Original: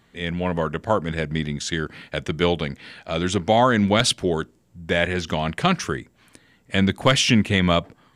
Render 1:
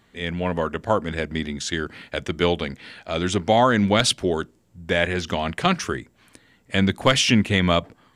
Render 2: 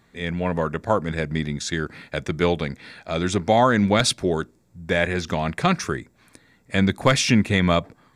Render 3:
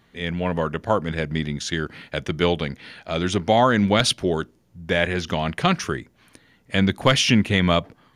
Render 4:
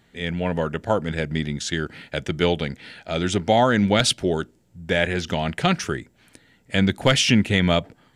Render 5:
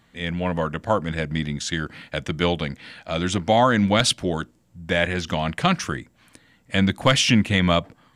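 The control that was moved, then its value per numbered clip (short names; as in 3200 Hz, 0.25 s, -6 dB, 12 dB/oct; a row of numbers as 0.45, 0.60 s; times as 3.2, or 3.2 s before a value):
notch, frequency: 150, 3000, 7700, 1100, 400 Hz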